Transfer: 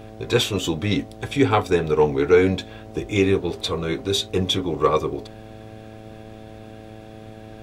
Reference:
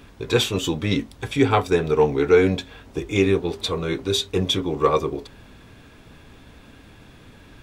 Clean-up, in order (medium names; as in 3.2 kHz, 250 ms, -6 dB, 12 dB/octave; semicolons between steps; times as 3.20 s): de-hum 109.1 Hz, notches 7